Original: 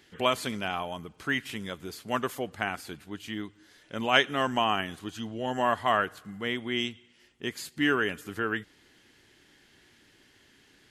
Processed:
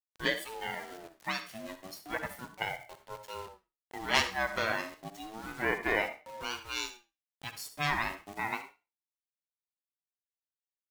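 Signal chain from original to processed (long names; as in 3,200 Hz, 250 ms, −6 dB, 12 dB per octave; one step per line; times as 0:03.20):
lower of the sound and its delayed copy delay 0.8 ms
low-shelf EQ 480 Hz −7.5 dB
in parallel at +2 dB: downward compressor 10 to 1, threshold −43 dBFS, peak gain reduction 25 dB
on the sum: noise reduction from a noise print of the clip's start 14 dB
bit reduction 8 bits
on a send at −9.5 dB: convolution reverb RT60 0.30 s, pre-delay 54 ms
on the sum: ring modulator whose carrier an LFO sweeps 590 Hz, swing 25%, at 0.32 Hz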